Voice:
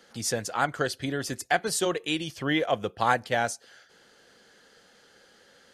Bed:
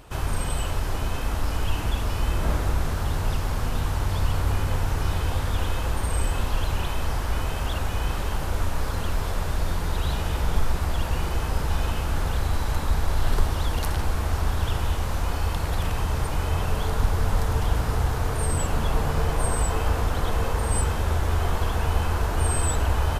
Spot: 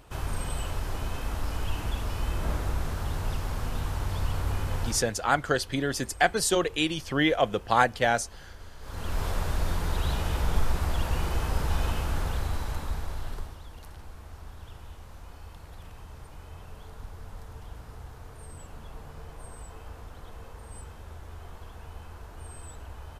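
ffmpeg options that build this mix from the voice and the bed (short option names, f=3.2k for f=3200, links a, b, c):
-filter_complex "[0:a]adelay=4700,volume=2dB[a];[1:a]volume=13dB,afade=t=out:st=4.86:d=0.21:silence=0.16788,afade=t=in:st=8.8:d=0.44:silence=0.11885,afade=t=out:st=11.9:d=1.7:silence=0.133352[b];[a][b]amix=inputs=2:normalize=0"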